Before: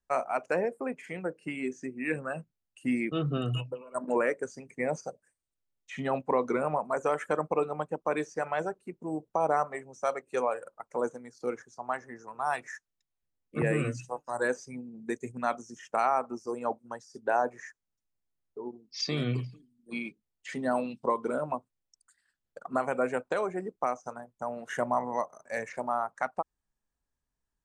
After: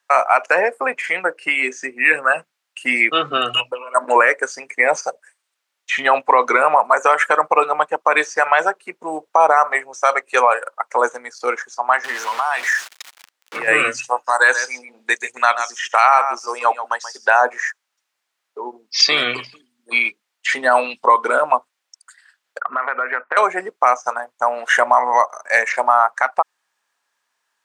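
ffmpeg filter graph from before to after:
ffmpeg -i in.wav -filter_complex "[0:a]asettb=1/sr,asplit=3[link_01][link_02][link_03];[link_01]atrim=end=12.044[link_04];[link_02]atrim=start=12.04:end=13.68,asetpts=PTS-STARTPTS,afade=type=in:duration=0.004:curve=qsin,afade=type=out:start_time=1.636:duration=0.004:curve=qsin,aeval=exprs='val(0)+0.5*0.00794*sgn(val(0))':channel_layout=same,acompressor=threshold=-36dB:ratio=4:attack=3.2:release=140:knee=1:detection=peak[link_05];[link_03]atrim=start=13.676[link_06];[link_04][link_05]acrossfade=duration=0.004:curve1=hsin:curve2=qsin[link_07];[link_07][link_06]acrossfade=duration=0.004:curve1=qsin:curve2=hsin,asettb=1/sr,asplit=3[link_08][link_09][link_10];[link_08]atrim=end=14.314[link_11];[link_09]atrim=start=14.31:end=17.41,asetpts=PTS-STARTPTS,afade=type=in:duration=0.004:curve=qsin,afade=type=out:start_time=3.096:duration=0.004:curve=qsin,highpass=frequency=620:poles=1,equalizer=frequency=3600:width_type=o:width=1.3:gain=5,aecho=1:1:132:0.237,atrim=end_sample=136710[link_12];[link_10]atrim=start=17.406[link_13];[link_11][link_12]acrossfade=duration=0.004:curve1=hsin:curve2=qsin[link_14];[link_14][link_13]acrossfade=duration=0.004:curve1=qsin:curve2=hsin,asettb=1/sr,asplit=3[link_15][link_16][link_17];[link_15]atrim=end=22.604[link_18];[link_16]atrim=start=22.6:end=23.37,asetpts=PTS-STARTPTS,afade=type=in:duration=0.004:curve=qsin,afade=type=out:start_time=0.766:duration=0.004:curve=qsin,highpass=190,equalizer=frequency=200:width_type=q:width=4:gain=7,equalizer=frequency=290:width_type=q:width=4:gain=-3,equalizer=frequency=530:width_type=q:width=4:gain=-3,equalizer=frequency=780:width_type=q:width=4:gain=-6,equalizer=frequency=1300:width_type=q:width=4:gain=5,equalizer=frequency=1900:width_type=q:width=4:gain=8,lowpass=frequency=2100:width=0.5412,lowpass=frequency=2100:width=1.3066,acompressor=threshold=-35dB:ratio=12:attack=3.2:release=140:knee=1:detection=peak[link_19];[link_17]atrim=start=23.366[link_20];[link_18][link_19]acrossfade=duration=0.004:curve1=hsin:curve2=qsin[link_21];[link_21][link_20]acrossfade=duration=0.004:curve1=qsin:curve2=hsin,highpass=1100,aemphasis=mode=reproduction:type=50kf,alimiter=level_in=26dB:limit=-1dB:release=50:level=0:latency=1,volume=-1dB" out.wav

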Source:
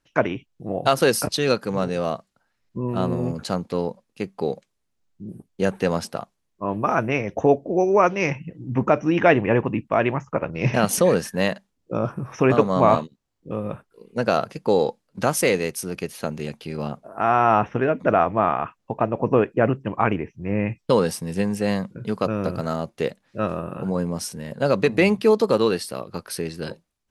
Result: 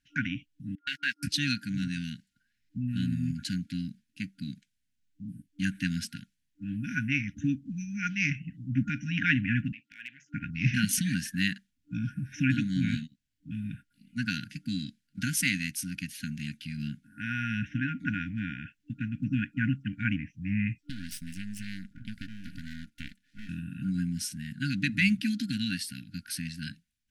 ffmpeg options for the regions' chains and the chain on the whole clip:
ffmpeg -i in.wav -filter_complex "[0:a]asettb=1/sr,asplit=3[link_01][link_02][link_03];[link_01]atrim=end=0.754[link_04];[link_02]atrim=start=0.75:end=1.23,asetpts=PTS-STARTPTS,afade=type=in:duration=0.004:curve=qsin,afade=type=out:start_time=0.476:duration=0.004:curve=qsin,aeval=exprs='val(0)+0.5*0.0794*sgn(val(0))':channel_layout=same,bandpass=frequency=1700:width_type=q:width=1.2,agate=range=-55dB:threshold=-27dB:ratio=16:release=100:detection=peak[link_05];[link_03]atrim=start=1.226[link_06];[link_04][link_05]acrossfade=duration=0.004:curve1=hsin:curve2=qsin[link_07];[link_07][link_06]acrossfade=duration=0.004:curve1=qsin:curve2=hsin,asettb=1/sr,asplit=3[link_08][link_09][link_10];[link_08]atrim=end=9.724[link_11];[link_09]atrim=start=9.72:end=10.34,asetpts=PTS-STARTPTS,afade=type=in:duration=0.004:curve=qsin,afade=type=out:start_time=0.616:duration=0.004:curve=qsin,acompressor=threshold=-24dB:ratio=5:attack=3.2:release=140:knee=1:detection=peak,bandpass=frequency=3800:width_type=q:width=0.73,volume=27dB,asoftclip=hard,volume=-27dB[link_12];[link_10]atrim=start=10.336[link_13];[link_11][link_12]acrossfade=duration=0.004:curve1=hsin:curve2=qsin[link_14];[link_14][link_13]acrossfade=duration=0.004:curve1=qsin:curve2=hsin,asettb=1/sr,asplit=3[link_15][link_16][link_17];[link_15]atrim=end=20.814[link_18];[link_16]atrim=start=20.81:end=23.49,asetpts=PTS-STARTPTS,afade=type=in:duration=0.004:curve=qsin,afade=type=out:start_time=2.676:duration=0.004:curve=qsin,aecho=1:1:3.4:0.3,atrim=end_sample=118188,acompressor=threshold=-26dB:ratio=3:attack=3.2:release=140:knee=1:detection=peak,aeval=exprs='max(val(0),0)':channel_layout=same[link_19];[link_17]atrim=start=23.486[link_20];[link_18][link_19]acrossfade=duration=0.004:curve1=hsin:curve2=qsin[link_21];[link_21][link_20]acrossfade=duration=0.004:curve1=qsin:curve2=hsin,afftfilt=real='re*(1-between(b*sr/4096,300,1400))':imag='im*(1-between(b*sr/4096,300,1400))':win_size=4096:overlap=0.75,equalizer=frequency=2900:width_type=o:width=0.72:gain=3,volume=-4dB" out.wav

